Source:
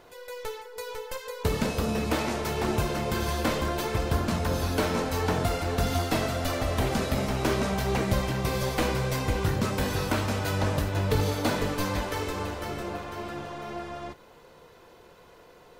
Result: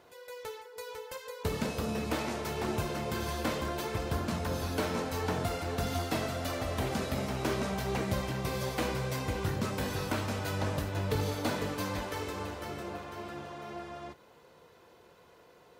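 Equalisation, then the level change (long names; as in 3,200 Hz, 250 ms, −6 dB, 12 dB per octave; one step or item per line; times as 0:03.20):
high-pass filter 65 Hz
−5.5 dB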